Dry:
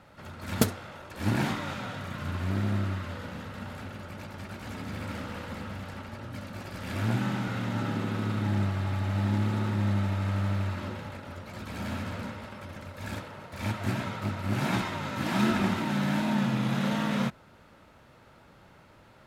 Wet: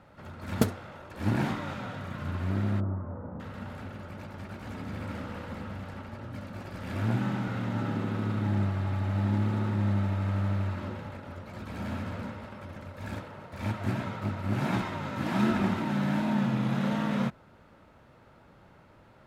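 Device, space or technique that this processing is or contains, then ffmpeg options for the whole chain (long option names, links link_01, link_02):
behind a face mask: -filter_complex "[0:a]highshelf=frequency=2300:gain=-8,asettb=1/sr,asplit=3[link_01][link_02][link_03];[link_01]atrim=end=2.804[link_04];[link_02]atrim=start=2.8:end=3.4,asetpts=PTS-STARTPTS,afade=type=in:duration=0.004:curve=qsin,afade=type=out:start_time=0.596:duration=0.004:curve=qsin,lowpass=frequency=1100:width=0.5412,lowpass=frequency=1100:width=1.3066[link_05];[link_03]atrim=start=3.396[link_06];[link_04][link_05]acrossfade=duration=0.004:curve1=hsin:curve2=qsin[link_07];[link_07][link_06]acrossfade=duration=0.004:curve1=qsin:curve2=hsin"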